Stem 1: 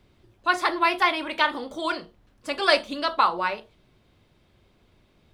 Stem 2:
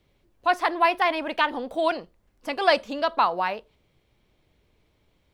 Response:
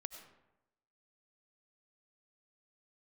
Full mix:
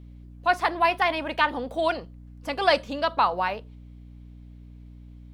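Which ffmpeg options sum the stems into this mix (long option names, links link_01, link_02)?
-filter_complex "[0:a]volume=-14.5dB[link_01];[1:a]aeval=exprs='val(0)+0.00708*(sin(2*PI*60*n/s)+sin(2*PI*2*60*n/s)/2+sin(2*PI*3*60*n/s)/3+sin(2*PI*4*60*n/s)/4+sin(2*PI*5*60*n/s)/5)':channel_layout=same,volume=-1,volume=-0.5dB[link_02];[link_01][link_02]amix=inputs=2:normalize=0"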